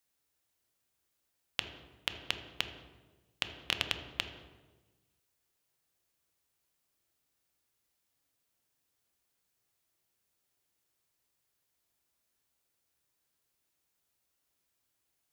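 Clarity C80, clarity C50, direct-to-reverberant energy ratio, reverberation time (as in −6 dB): 10.0 dB, 7.5 dB, 6.0 dB, 1.3 s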